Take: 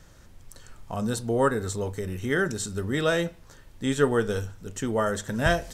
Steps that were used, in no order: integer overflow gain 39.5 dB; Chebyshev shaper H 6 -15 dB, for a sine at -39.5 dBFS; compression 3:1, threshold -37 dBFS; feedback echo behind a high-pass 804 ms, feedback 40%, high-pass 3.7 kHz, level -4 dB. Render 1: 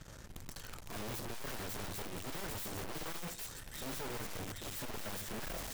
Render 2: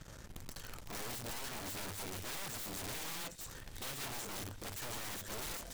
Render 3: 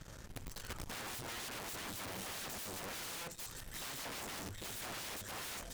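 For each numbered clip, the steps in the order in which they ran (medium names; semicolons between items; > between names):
feedback echo behind a high-pass > Chebyshev shaper > compression > integer overflow; compression > Chebyshev shaper > feedback echo behind a high-pass > integer overflow; feedback echo behind a high-pass > compression > integer overflow > Chebyshev shaper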